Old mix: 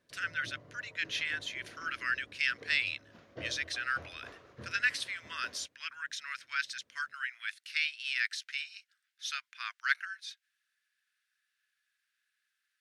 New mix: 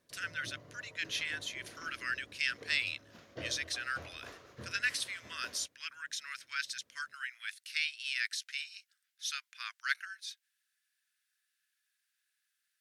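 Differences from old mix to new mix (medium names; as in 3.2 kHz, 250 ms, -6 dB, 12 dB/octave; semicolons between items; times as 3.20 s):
speech -5.5 dB; master: remove low-pass 2.4 kHz 6 dB/octave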